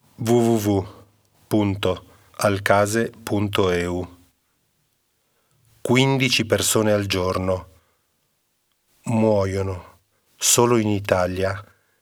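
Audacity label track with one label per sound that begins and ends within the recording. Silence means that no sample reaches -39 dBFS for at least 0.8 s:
5.850000	7.640000	sound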